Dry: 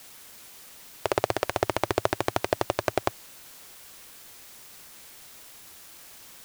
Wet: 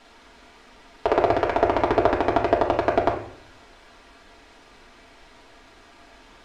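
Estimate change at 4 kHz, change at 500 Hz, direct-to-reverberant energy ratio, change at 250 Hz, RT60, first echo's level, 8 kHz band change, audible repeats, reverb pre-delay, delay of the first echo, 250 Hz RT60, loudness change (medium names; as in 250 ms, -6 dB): -2.0 dB, +7.5 dB, -3.0 dB, +8.0 dB, 0.60 s, no echo, under -10 dB, no echo, 3 ms, no echo, 0.80 s, +6.5 dB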